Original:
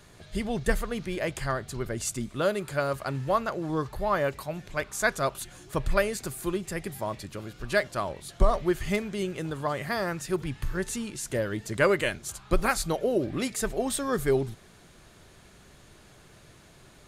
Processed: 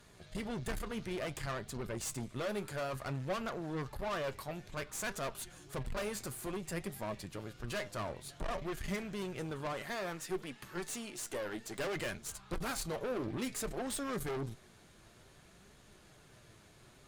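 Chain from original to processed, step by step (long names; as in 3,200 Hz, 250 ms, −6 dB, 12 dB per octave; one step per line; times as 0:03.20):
0:09.73–0:11.96: high-pass filter 250 Hz 12 dB per octave
tube saturation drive 32 dB, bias 0.7
flanger 0.57 Hz, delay 4.1 ms, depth 5.9 ms, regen +66%
level +2 dB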